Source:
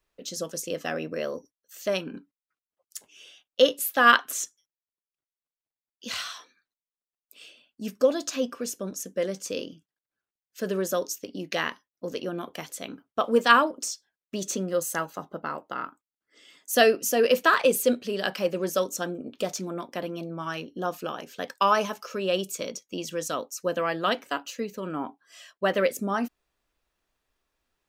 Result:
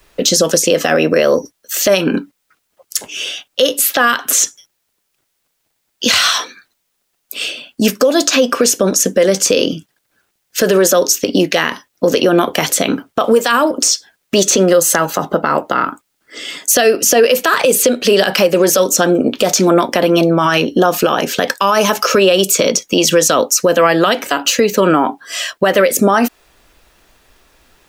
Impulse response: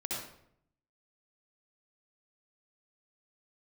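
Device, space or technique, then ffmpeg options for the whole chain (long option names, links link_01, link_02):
mastering chain: -filter_complex "[0:a]equalizer=frequency=1100:width_type=o:width=0.21:gain=-2.5,acrossover=split=340|6600[link_01][link_02][link_03];[link_01]acompressor=threshold=-44dB:ratio=4[link_04];[link_02]acompressor=threshold=-29dB:ratio=4[link_05];[link_03]acompressor=threshold=-42dB:ratio=4[link_06];[link_04][link_05][link_06]amix=inputs=3:normalize=0,acompressor=threshold=-33dB:ratio=3,asoftclip=type=hard:threshold=-19.5dB,alimiter=level_in=28.5dB:limit=-1dB:release=50:level=0:latency=1,volume=-1dB"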